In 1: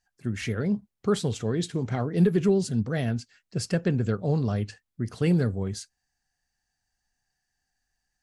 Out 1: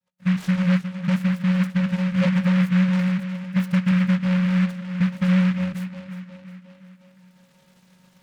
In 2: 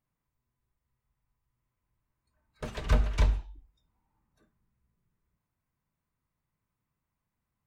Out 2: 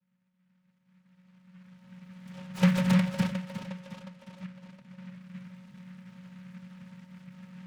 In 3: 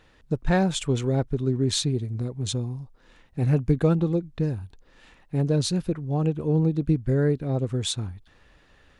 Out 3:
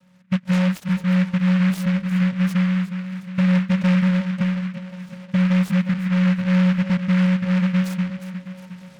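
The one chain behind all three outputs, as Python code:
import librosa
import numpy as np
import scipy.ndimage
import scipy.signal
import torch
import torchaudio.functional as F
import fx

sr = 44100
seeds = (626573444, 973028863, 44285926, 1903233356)

p1 = fx.recorder_agc(x, sr, target_db=-16.0, rise_db_per_s=14.0, max_gain_db=30)
p2 = np.clip(10.0 ** (11.5 / 20.0) * p1, -1.0, 1.0) / 10.0 ** (11.5 / 20.0)
p3 = fx.vocoder(p2, sr, bands=8, carrier='square', carrier_hz=183.0)
p4 = p3 + fx.echo_tape(p3, sr, ms=359, feedback_pct=62, wet_db=-9.0, lp_hz=3400.0, drive_db=7.0, wow_cents=11, dry=0)
p5 = fx.fold_sine(p4, sr, drive_db=9, ceiling_db=-9.5)
p6 = fx.bass_treble(p5, sr, bass_db=6, treble_db=0)
p7 = fx.noise_mod_delay(p6, sr, seeds[0], noise_hz=1700.0, depth_ms=0.13)
y = p7 * 10.0 ** (-9.0 / 20.0)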